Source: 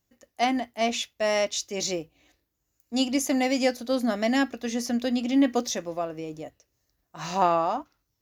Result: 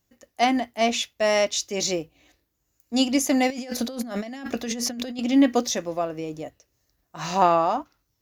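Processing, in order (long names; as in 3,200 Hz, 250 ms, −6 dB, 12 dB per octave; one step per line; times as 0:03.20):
0:03.50–0:05.19: compressor whose output falls as the input rises −35 dBFS, ratio −1
level +3.5 dB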